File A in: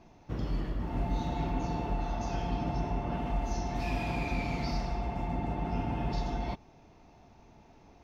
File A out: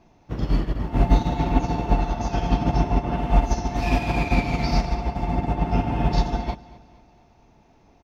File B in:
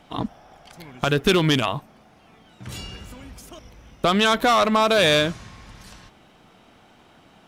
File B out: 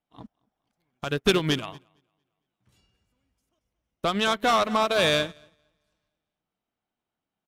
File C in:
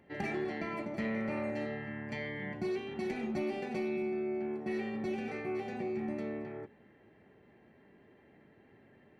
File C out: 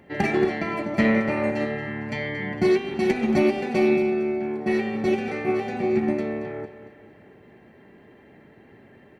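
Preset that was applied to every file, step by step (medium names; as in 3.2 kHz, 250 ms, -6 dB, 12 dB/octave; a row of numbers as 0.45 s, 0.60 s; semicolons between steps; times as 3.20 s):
on a send: feedback delay 228 ms, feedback 47%, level -13 dB; on the sum: upward expansion 2.5:1, over -37 dBFS; normalise loudness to -24 LUFS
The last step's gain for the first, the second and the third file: +16.5 dB, -1.0 dB, +17.0 dB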